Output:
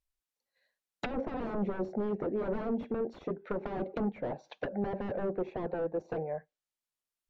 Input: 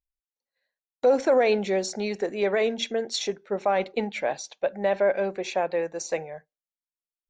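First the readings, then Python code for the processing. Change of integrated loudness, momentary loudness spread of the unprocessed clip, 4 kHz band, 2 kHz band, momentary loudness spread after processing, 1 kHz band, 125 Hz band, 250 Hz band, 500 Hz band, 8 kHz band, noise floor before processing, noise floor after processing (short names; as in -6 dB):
-10.0 dB, 9 LU, -22.0 dB, -14.0 dB, 6 LU, -10.5 dB, n/a, -2.5 dB, -11.0 dB, under -30 dB, under -85 dBFS, under -85 dBFS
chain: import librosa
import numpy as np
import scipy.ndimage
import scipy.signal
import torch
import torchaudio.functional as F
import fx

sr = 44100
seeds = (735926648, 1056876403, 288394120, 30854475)

y = 10.0 ** (-27.0 / 20.0) * (np.abs((x / 10.0 ** (-27.0 / 20.0) + 3.0) % 4.0 - 2.0) - 1.0)
y = fx.env_lowpass_down(y, sr, base_hz=600.0, full_db=-31.5)
y = F.gain(torch.from_numpy(y), 3.0).numpy()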